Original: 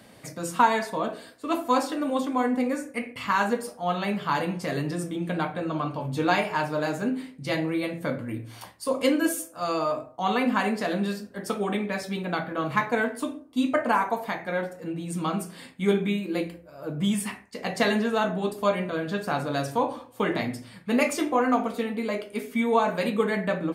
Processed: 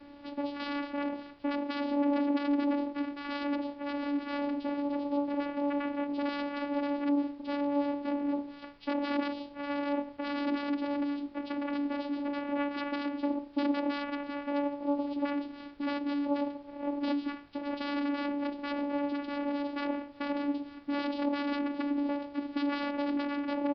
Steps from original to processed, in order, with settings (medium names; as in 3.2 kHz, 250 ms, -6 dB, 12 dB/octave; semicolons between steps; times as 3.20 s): integer overflow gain 19 dB; peak limiter -26 dBFS, peak gain reduction 7 dB; comb 3.6 ms, depth 72%; de-hum 393.3 Hz, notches 34; vocoder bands 4, saw 286 Hz; added noise pink -63 dBFS; resampled via 11.025 kHz